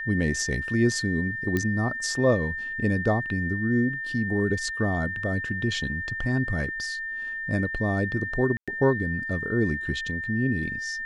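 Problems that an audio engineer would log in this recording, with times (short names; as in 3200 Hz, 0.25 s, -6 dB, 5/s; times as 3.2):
tone 1800 Hz -30 dBFS
1.57 pop -13 dBFS
8.57–8.68 gap 0.106 s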